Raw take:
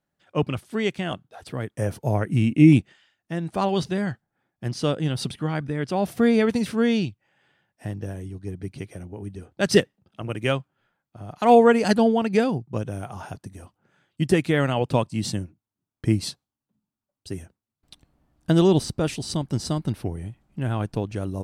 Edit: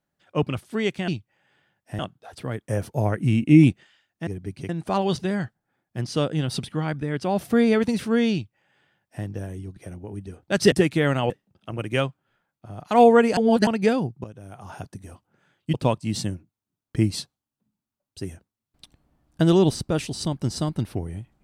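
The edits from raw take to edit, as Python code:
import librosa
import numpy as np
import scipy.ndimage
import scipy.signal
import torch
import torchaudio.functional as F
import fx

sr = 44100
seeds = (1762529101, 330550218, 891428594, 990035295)

y = fx.edit(x, sr, fx.duplicate(start_s=7.0, length_s=0.91, to_s=1.08),
    fx.move(start_s=8.44, length_s=0.42, to_s=3.36),
    fx.reverse_span(start_s=11.88, length_s=0.3),
    fx.fade_in_from(start_s=12.75, length_s=0.57, curve='qua', floor_db=-14.0),
    fx.move(start_s=14.25, length_s=0.58, to_s=9.81), tone=tone)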